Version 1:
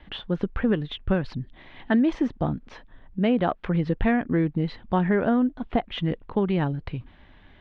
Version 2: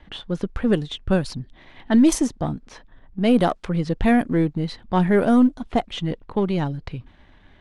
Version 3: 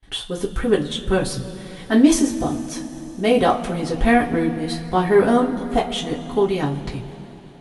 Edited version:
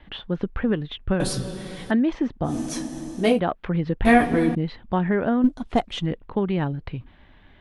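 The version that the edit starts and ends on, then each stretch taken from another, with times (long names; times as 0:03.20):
1
0:01.20–0:01.91: punch in from 3
0:02.51–0:03.33: punch in from 3, crossfade 0.16 s
0:04.05–0:04.55: punch in from 3
0:05.44–0:06.06: punch in from 2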